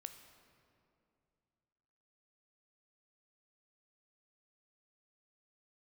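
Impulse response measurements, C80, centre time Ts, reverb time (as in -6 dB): 10.0 dB, 25 ms, 2.6 s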